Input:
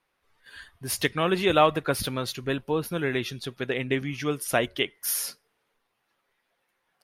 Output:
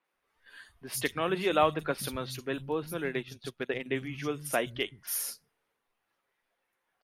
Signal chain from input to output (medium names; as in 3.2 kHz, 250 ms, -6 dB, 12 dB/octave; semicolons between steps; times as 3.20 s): three bands offset in time mids, highs, lows 40/130 ms, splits 160/4200 Hz; 3.04–3.86 s: transient shaper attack +2 dB, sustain -11 dB; trim -5 dB